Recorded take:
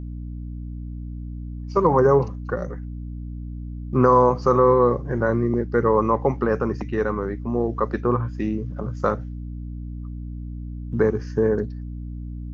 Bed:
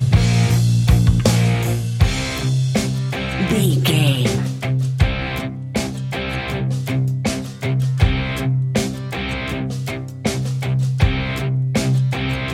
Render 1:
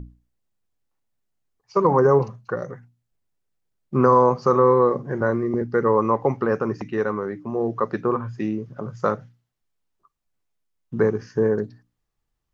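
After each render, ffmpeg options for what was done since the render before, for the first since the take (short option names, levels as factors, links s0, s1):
-af "bandreject=f=60:t=h:w=6,bandreject=f=120:t=h:w=6,bandreject=f=180:t=h:w=6,bandreject=f=240:t=h:w=6,bandreject=f=300:t=h:w=6"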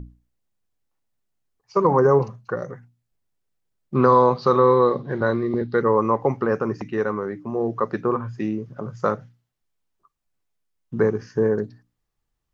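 -filter_complex "[0:a]asettb=1/sr,asplit=3[s0][s1][s2];[s0]atrim=end=3.954[s3];[s1]atrim=start=3.95:end=5.82,asetpts=PTS-STARTPTS,afade=t=in:d=0.004:c=qsin,afade=t=out:st=1.866:d=0.004:c=qsin,lowpass=f=3900:t=q:w=9.5[s4];[s2]atrim=start=5.816[s5];[s3][s4]acrossfade=d=0.004:c1=hsin:c2=qsin[s6];[s6][s5]acrossfade=d=0.004:c1=qsin:c2=hsin"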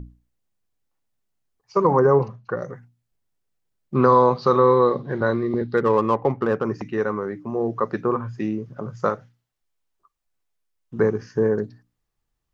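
-filter_complex "[0:a]asettb=1/sr,asplit=3[s0][s1][s2];[s0]atrim=end=1.994[s3];[s1]atrim=start=1.99:end=2.61,asetpts=PTS-STARTPTS,afade=t=in:d=0.004:c=qsin,afade=t=out:st=0.616:d=0.004:c=qsin,lowpass=4300[s4];[s2]atrim=start=2.606[s5];[s3][s4]acrossfade=d=0.004:c1=hsin:c2=qsin[s6];[s6][s5]acrossfade=d=0.004:c1=qsin:c2=hsin,asettb=1/sr,asplit=3[s7][s8][s9];[s7]atrim=end=5.774[s10];[s8]atrim=start=5.77:end=6.64,asetpts=PTS-STARTPTS,afade=t=in:d=0.004:c=qsin,afade=t=out:st=0.866:d=0.004:c=qsin,adynamicsmooth=sensitivity=2.5:basefreq=2100[s11];[s9]atrim=start=6.636[s12];[s10][s11]acrossfade=d=0.004:c1=hsin:c2=qsin[s13];[s13][s12]acrossfade=d=0.004:c1=qsin:c2=hsin,asettb=1/sr,asplit=3[s14][s15][s16];[s14]atrim=end=9.094[s17];[s15]atrim=start=9.09:end=10.99,asetpts=PTS-STARTPTS,afade=t=in:d=0.004:c=qsin,afade=t=out:st=1.896:d=0.004:c=qsin,equalizer=f=160:w=0.72:g=-6.5[s18];[s16]atrim=start=10.986[s19];[s17][s18]acrossfade=d=0.004:c1=hsin:c2=qsin[s20];[s20][s19]acrossfade=d=0.004:c1=qsin:c2=hsin"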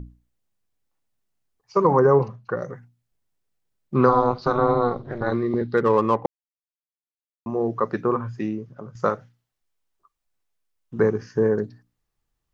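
-filter_complex "[0:a]asettb=1/sr,asplit=3[s0][s1][s2];[s0]atrim=end=4.094[s3];[s1]atrim=start=4.09:end=5.32,asetpts=PTS-STARTPTS,afade=t=in:d=0.004:c=qsin,afade=t=out:st=1.226:d=0.004:c=qsin,tremolo=f=240:d=0.947[s4];[s2]atrim=start=5.316[s5];[s3][s4]acrossfade=d=0.004:c1=hsin:c2=qsin[s6];[s6][s5]acrossfade=d=0.004:c1=qsin:c2=hsin,asplit=4[s7][s8][s9][s10];[s7]atrim=end=6.26,asetpts=PTS-STARTPTS,afade=t=out:st=6.256:d=0.004:c=hsin[s11];[s8]atrim=start=6.26:end=7.46,asetpts=PTS-STARTPTS,volume=0[s12];[s9]atrim=start=7.46:end=8.95,asetpts=PTS-STARTPTS,afade=t=in:d=0.004:c=hsin,afade=t=out:st=0.85:d=0.64:silence=0.334965[s13];[s10]atrim=start=8.95,asetpts=PTS-STARTPTS,afade=t=in:d=0.004:c=hsin:silence=0.334965[s14];[s11][s12][s13][s14]concat=n=4:v=0:a=1"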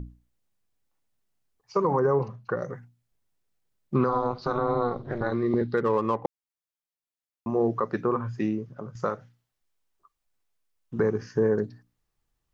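-af "alimiter=limit=0.2:level=0:latency=1:release=246"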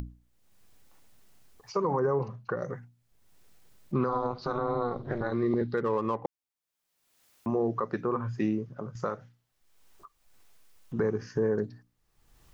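-af "acompressor=mode=upward:threshold=0.00891:ratio=2.5,alimiter=limit=0.119:level=0:latency=1:release=170"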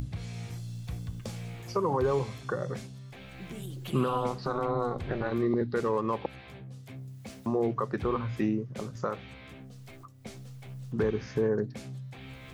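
-filter_complex "[1:a]volume=0.0631[s0];[0:a][s0]amix=inputs=2:normalize=0"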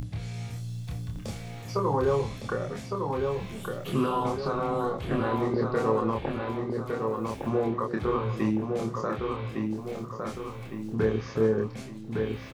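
-filter_complex "[0:a]asplit=2[s0][s1];[s1]adelay=27,volume=0.708[s2];[s0][s2]amix=inputs=2:normalize=0,asplit=2[s3][s4];[s4]adelay=1159,lowpass=f=4300:p=1,volume=0.631,asplit=2[s5][s6];[s6]adelay=1159,lowpass=f=4300:p=1,volume=0.49,asplit=2[s7][s8];[s8]adelay=1159,lowpass=f=4300:p=1,volume=0.49,asplit=2[s9][s10];[s10]adelay=1159,lowpass=f=4300:p=1,volume=0.49,asplit=2[s11][s12];[s12]adelay=1159,lowpass=f=4300:p=1,volume=0.49,asplit=2[s13][s14];[s14]adelay=1159,lowpass=f=4300:p=1,volume=0.49[s15];[s3][s5][s7][s9][s11][s13][s15]amix=inputs=7:normalize=0"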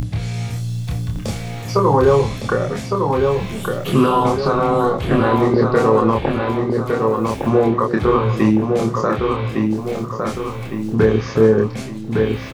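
-af "volume=3.98,alimiter=limit=0.708:level=0:latency=1"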